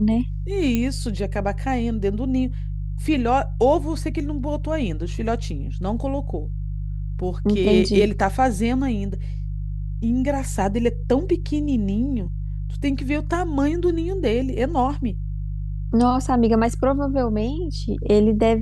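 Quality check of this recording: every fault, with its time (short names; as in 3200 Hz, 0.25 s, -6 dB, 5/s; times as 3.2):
hum 50 Hz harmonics 3 -27 dBFS
0.75 pop -9 dBFS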